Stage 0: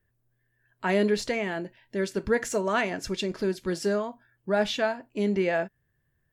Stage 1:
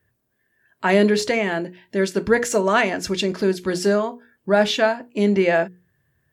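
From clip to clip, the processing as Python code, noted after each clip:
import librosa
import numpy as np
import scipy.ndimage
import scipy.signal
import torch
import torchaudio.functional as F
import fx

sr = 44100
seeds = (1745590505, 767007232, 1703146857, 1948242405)

y = scipy.signal.sosfilt(scipy.signal.butter(2, 73.0, 'highpass', fs=sr, output='sos'), x)
y = fx.hum_notches(y, sr, base_hz=60, count=8)
y = F.gain(torch.from_numpy(y), 8.0).numpy()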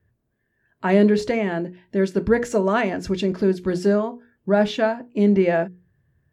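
y = fx.tilt_eq(x, sr, slope=-2.5)
y = F.gain(torch.from_numpy(y), -3.5).numpy()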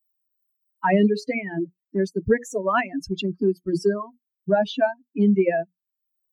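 y = fx.bin_expand(x, sr, power=3.0)
y = fx.band_squash(y, sr, depth_pct=70)
y = F.gain(torch.from_numpy(y), 4.0).numpy()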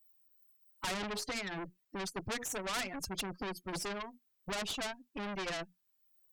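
y = fx.tube_stage(x, sr, drive_db=27.0, bias=0.35)
y = fx.spectral_comp(y, sr, ratio=2.0)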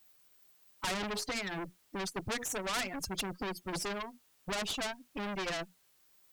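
y = fx.quant_dither(x, sr, seeds[0], bits=12, dither='triangular')
y = F.gain(torch.from_numpy(y), 2.0).numpy()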